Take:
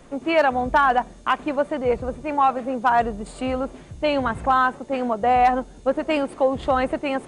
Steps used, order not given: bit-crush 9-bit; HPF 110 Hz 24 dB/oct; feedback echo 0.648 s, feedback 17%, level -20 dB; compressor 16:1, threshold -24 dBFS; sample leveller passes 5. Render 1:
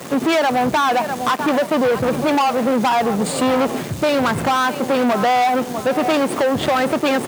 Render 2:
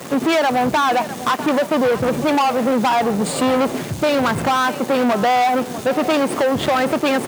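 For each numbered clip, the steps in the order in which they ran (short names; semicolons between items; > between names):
feedback echo > compressor > bit-crush > sample leveller > HPF; compressor > bit-crush > feedback echo > sample leveller > HPF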